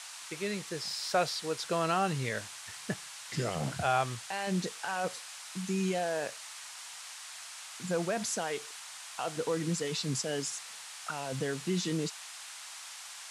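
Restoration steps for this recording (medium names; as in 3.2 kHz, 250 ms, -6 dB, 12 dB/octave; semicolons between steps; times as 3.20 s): noise print and reduce 30 dB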